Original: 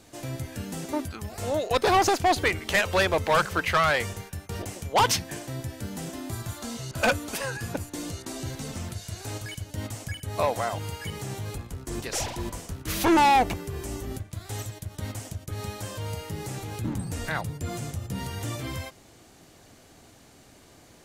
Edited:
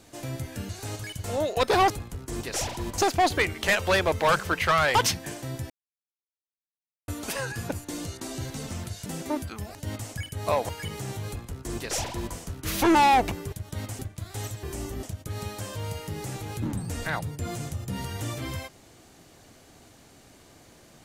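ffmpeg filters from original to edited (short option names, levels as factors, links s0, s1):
-filter_complex "[0:a]asplit=15[s0][s1][s2][s3][s4][s5][s6][s7][s8][s9][s10][s11][s12][s13][s14];[s0]atrim=end=0.692[s15];[s1]atrim=start=9.108:end=9.662[s16];[s2]atrim=start=1.378:end=2.042[s17];[s3]atrim=start=11.488:end=12.572[s18];[s4]atrim=start=2.038:end=4.012[s19];[s5]atrim=start=4.998:end=5.75,asetpts=PTS-STARTPTS,afade=t=out:st=0.748:d=0.004:c=hsin[s20];[s6]atrim=start=5.75:end=7.13,asetpts=PTS-STARTPTS,volume=0[s21];[s7]atrim=start=7.13:end=9.112,asetpts=PTS-STARTPTS,afade=t=in:d=0.004:c=hsin[s22];[s8]atrim=start=0.688:end=1.382[s23];[s9]atrim=start=9.658:end=10.602[s24];[s10]atrim=start=10.908:end=13.742[s25];[s11]atrim=start=14.778:end=15.252[s26];[s12]atrim=start=14.138:end=14.782[s27];[s13]atrim=start=13.738:end=14.142[s28];[s14]atrim=start=15.248[s29];[s15][s16]acrossfade=d=0.004:c1=hsin:c2=hsin[s30];[s30][s17]acrossfade=d=0.004:c1=hsin:c2=hsin[s31];[s31][s18]acrossfade=d=0.004:c1=hsin:c2=hsin[s32];[s32][s19]acrossfade=d=0.004:c1=hsin:c2=hsin[s33];[s20][s21][s22]concat=n=3:v=0:a=1[s34];[s33][s34]acrossfade=d=0.004:c1=hsin:c2=hsin[s35];[s35][s23]acrossfade=d=0.004:c1=hsin:c2=hsin[s36];[s36][s24]acrossfade=d=0.004:c1=hsin:c2=hsin[s37];[s37][s25]acrossfade=d=0.004:c1=hsin:c2=hsin[s38];[s38][s26]acrossfade=d=0.004:c1=hsin:c2=hsin[s39];[s39][s27]acrossfade=d=0.004:c1=hsin:c2=hsin[s40];[s40][s28]acrossfade=d=0.004:c1=hsin:c2=hsin[s41];[s41][s29]acrossfade=d=0.004:c1=hsin:c2=hsin"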